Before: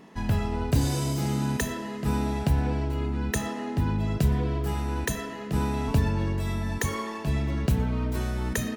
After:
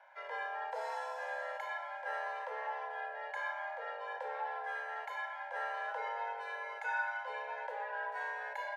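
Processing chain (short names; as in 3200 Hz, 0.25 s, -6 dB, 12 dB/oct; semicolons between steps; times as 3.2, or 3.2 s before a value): harmonic-percussive split percussive -14 dB; double band-pass 840 Hz, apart 1.1 oct; frequency shift +370 Hz; gain +7 dB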